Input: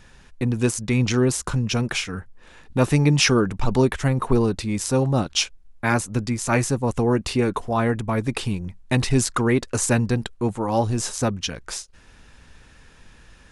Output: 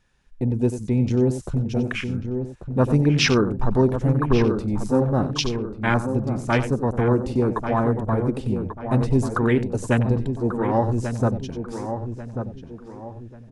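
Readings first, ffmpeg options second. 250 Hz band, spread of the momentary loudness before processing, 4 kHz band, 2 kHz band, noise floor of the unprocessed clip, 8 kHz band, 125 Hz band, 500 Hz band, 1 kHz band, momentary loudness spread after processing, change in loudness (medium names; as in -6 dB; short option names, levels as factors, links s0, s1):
+1.0 dB, 9 LU, -4.0 dB, -2.0 dB, -51 dBFS, -11.0 dB, +1.0 dB, +1.0 dB, 0.0 dB, 11 LU, 0.0 dB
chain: -filter_complex "[0:a]asplit=2[s0][s1];[s1]aecho=0:1:93:0.299[s2];[s0][s2]amix=inputs=2:normalize=0,afwtdn=0.0562,asplit=2[s3][s4];[s4]adelay=1140,lowpass=f=1600:p=1,volume=0.422,asplit=2[s5][s6];[s6]adelay=1140,lowpass=f=1600:p=1,volume=0.39,asplit=2[s7][s8];[s8]adelay=1140,lowpass=f=1600:p=1,volume=0.39,asplit=2[s9][s10];[s10]adelay=1140,lowpass=f=1600:p=1,volume=0.39[s11];[s5][s7][s9][s11]amix=inputs=4:normalize=0[s12];[s3][s12]amix=inputs=2:normalize=0"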